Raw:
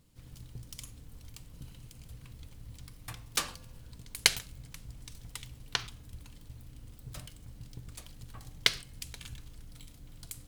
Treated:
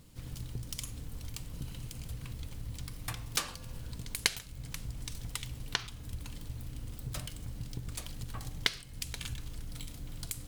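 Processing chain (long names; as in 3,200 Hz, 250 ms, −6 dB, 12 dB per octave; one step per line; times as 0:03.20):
downward compressor 2 to 1, threshold −45 dBFS, peak gain reduction 15.5 dB
level +8.5 dB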